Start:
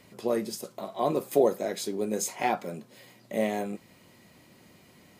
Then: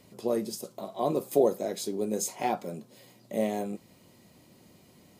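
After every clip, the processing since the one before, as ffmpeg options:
-af "equalizer=f=1.8k:w=0.9:g=-7.5"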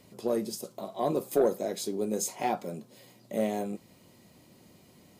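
-af "asoftclip=type=tanh:threshold=-14.5dB"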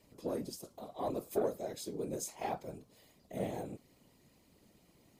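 -af "afftfilt=real='hypot(re,im)*cos(2*PI*random(0))':imag='hypot(re,im)*sin(2*PI*random(1))':win_size=512:overlap=0.75,volume=-2.5dB"

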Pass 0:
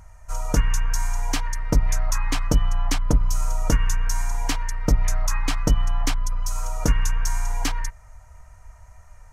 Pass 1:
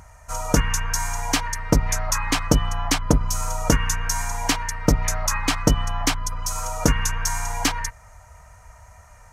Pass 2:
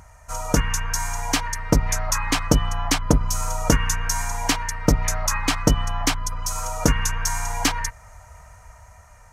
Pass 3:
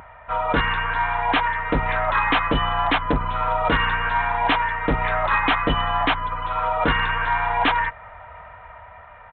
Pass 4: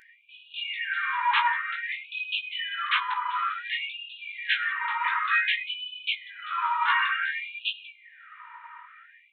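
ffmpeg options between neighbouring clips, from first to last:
-af "highpass=f=110:p=1,volume=6dB"
-af "dynaudnorm=f=210:g=11:m=11.5dB,volume=-1dB"
-filter_complex "[0:a]asplit=2[a][b];[b]highpass=f=720:p=1,volume=18dB,asoftclip=type=tanh:threshold=-1.5dB[c];[a][c]amix=inputs=2:normalize=0,lowpass=f=1.7k:p=1,volume=-6dB,aresample=8000,asoftclip=type=hard:threshold=-13dB,aresample=44100"
-af "flanger=delay=17.5:depth=3:speed=1.3,bandreject=f=175.5:t=h:w=4,bandreject=f=351:t=h:w=4,bandreject=f=526.5:t=h:w=4,bandreject=f=702:t=h:w=4,bandreject=f=877.5:t=h:w=4,bandreject=f=1.053k:t=h:w=4,bandreject=f=1.2285k:t=h:w=4,bandreject=f=1.404k:t=h:w=4,bandreject=f=1.5795k:t=h:w=4,bandreject=f=1.755k:t=h:w=4,bandreject=f=1.9305k:t=h:w=4,bandreject=f=2.106k:t=h:w=4,bandreject=f=2.2815k:t=h:w=4,bandreject=f=2.457k:t=h:w=4,bandreject=f=2.6325k:t=h:w=4,bandreject=f=2.808k:t=h:w=4,bandreject=f=2.9835k:t=h:w=4,bandreject=f=3.159k:t=h:w=4,bandreject=f=3.3345k:t=h:w=4,bandreject=f=3.51k:t=h:w=4,bandreject=f=3.6855k:t=h:w=4,bandreject=f=3.861k:t=h:w=4,bandreject=f=4.0365k:t=h:w=4,bandreject=f=4.212k:t=h:w=4,bandreject=f=4.3875k:t=h:w=4,bandreject=f=4.563k:t=h:w=4,bandreject=f=4.7385k:t=h:w=4,bandreject=f=4.914k:t=h:w=4,bandreject=f=5.0895k:t=h:w=4,afftfilt=real='re*gte(b*sr/1024,840*pow(2500/840,0.5+0.5*sin(2*PI*0.55*pts/sr)))':imag='im*gte(b*sr/1024,840*pow(2500/840,0.5+0.5*sin(2*PI*0.55*pts/sr)))':win_size=1024:overlap=0.75,volume=1.5dB"

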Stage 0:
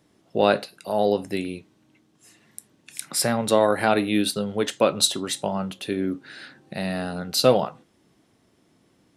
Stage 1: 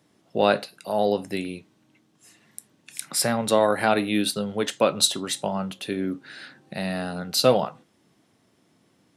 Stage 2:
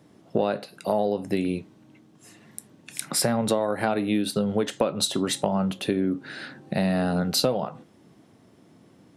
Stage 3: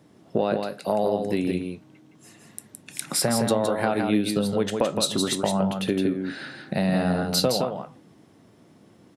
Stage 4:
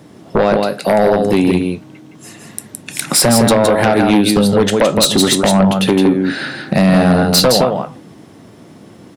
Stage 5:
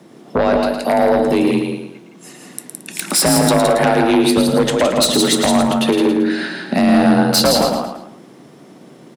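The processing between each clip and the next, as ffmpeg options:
-af "highpass=97,equalizer=f=360:w=1.5:g=-2.5"
-af "tiltshelf=f=1.1k:g=4.5,acompressor=threshold=-25dB:ratio=16,volume=5.5dB"
-af "aecho=1:1:165:0.562"
-af "aeval=exprs='0.447*sin(PI/2*2.82*val(0)/0.447)':c=same,volume=1.5dB"
-filter_complex "[0:a]afreqshift=37,asplit=2[a][b];[b]aecho=0:1:111|222|333|444:0.447|0.165|0.0612|0.0226[c];[a][c]amix=inputs=2:normalize=0,volume=-3dB"

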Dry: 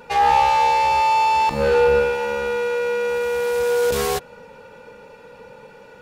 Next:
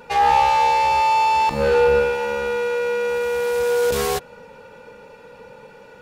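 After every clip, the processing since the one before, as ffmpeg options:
-af anull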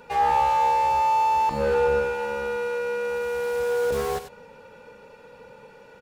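-filter_complex "[0:a]aecho=1:1:95:0.2,acrossover=split=1700[a][b];[b]asoftclip=type=tanh:threshold=-34.5dB[c];[a][c]amix=inputs=2:normalize=0,volume=-4.5dB"

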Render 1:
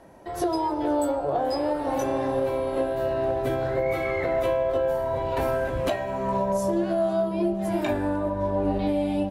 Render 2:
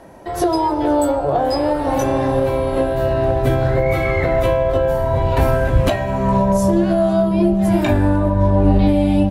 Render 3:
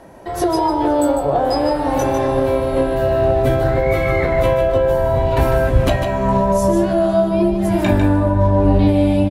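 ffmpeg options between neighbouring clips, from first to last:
-af "asubboost=boost=3:cutoff=210,volume=8.5dB"
-af "aecho=1:1:150:0.447"

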